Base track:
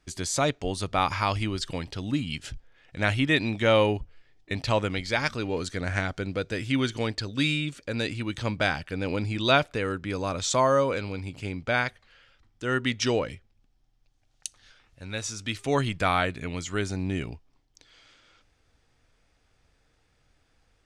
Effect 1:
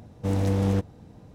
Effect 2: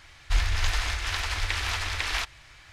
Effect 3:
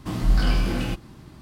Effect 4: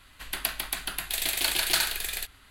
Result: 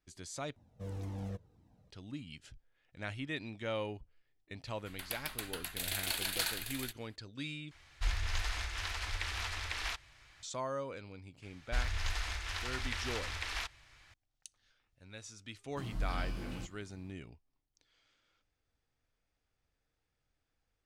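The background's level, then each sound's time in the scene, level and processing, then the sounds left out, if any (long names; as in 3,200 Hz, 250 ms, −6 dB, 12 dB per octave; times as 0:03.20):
base track −16.5 dB
0:00.56: overwrite with 1 −13.5 dB + flanger whose copies keep moving one way falling 1.9 Hz
0:04.66: mix in 4 −14.5 dB + automatic gain control gain up to 6 dB
0:07.71: overwrite with 2 −9.5 dB
0:11.42: mix in 2 −10 dB
0:15.71: mix in 3 −17 dB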